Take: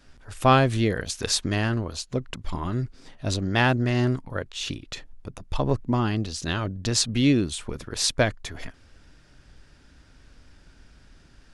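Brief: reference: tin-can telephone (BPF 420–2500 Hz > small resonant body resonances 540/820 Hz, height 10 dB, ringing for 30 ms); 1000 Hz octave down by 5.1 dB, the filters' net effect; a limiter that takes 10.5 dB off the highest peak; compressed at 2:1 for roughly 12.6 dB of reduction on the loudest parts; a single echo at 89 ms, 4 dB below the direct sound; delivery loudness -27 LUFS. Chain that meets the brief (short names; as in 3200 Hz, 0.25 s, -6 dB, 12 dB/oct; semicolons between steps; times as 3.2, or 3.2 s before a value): bell 1000 Hz -6.5 dB; compressor 2:1, threshold -39 dBFS; limiter -26.5 dBFS; BPF 420–2500 Hz; echo 89 ms -4 dB; small resonant body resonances 540/820 Hz, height 10 dB, ringing for 30 ms; gain +14.5 dB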